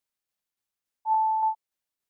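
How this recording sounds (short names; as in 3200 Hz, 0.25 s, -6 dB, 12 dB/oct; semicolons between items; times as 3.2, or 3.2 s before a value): tremolo saw down 3.5 Hz, depth 40%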